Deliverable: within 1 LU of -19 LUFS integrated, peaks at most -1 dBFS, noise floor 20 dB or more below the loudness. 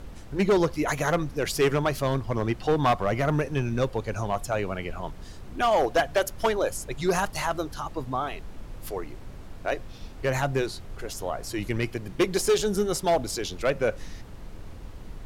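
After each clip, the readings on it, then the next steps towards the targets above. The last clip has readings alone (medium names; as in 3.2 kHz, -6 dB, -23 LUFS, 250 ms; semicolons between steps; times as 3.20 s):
clipped samples 1.3%; clipping level -16.5 dBFS; noise floor -42 dBFS; noise floor target -47 dBFS; loudness -27.0 LUFS; peak level -16.5 dBFS; loudness target -19.0 LUFS
-> clip repair -16.5 dBFS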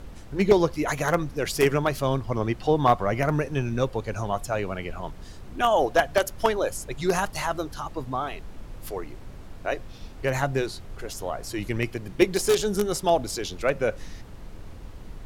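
clipped samples 0.0%; noise floor -42 dBFS; noise floor target -46 dBFS
-> noise print and reduce 6 dB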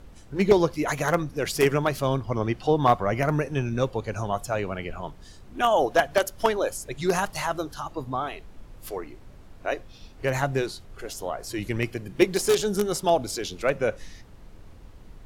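noise floor -47 dBFS; loudness -26.0 LUFS; peak level -7.0 dBFS; loudness target -19.0 LUFS
-> trim +7 dB; peak limiter -1 dBFS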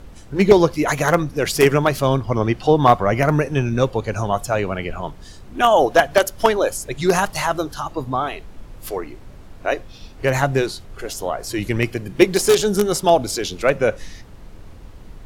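loudness -19.0 LUFS; peak level -1.0 dBFS; noise floor -40 dBFS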